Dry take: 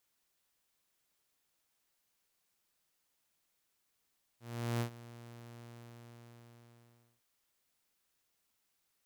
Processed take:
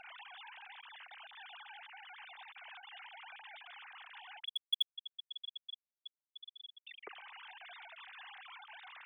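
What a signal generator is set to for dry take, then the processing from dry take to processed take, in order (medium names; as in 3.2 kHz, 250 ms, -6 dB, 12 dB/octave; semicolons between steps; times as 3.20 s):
ADSR saw 118 Hz, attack 405 ms, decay 90 ms, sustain -18.5 dB, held 1.22 s, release 1590 ms -28.5 dBFS
formants replaced by sine waves; in parallel at -9.5 dB: wavefolder -36.5 dBFS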